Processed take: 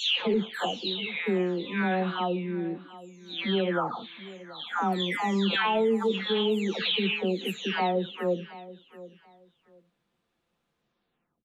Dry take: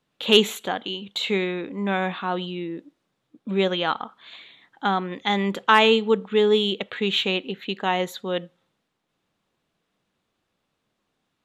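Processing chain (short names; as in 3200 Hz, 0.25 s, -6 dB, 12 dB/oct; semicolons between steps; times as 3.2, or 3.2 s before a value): spectral delay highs early, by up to 0.621 s; high shelf 4700 Hz -5 dB; limiter -17.5 dBFS, peak gain reduction 11.5 dB; on a send: feedback echo 0.728 s, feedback 22%, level -17.5 dB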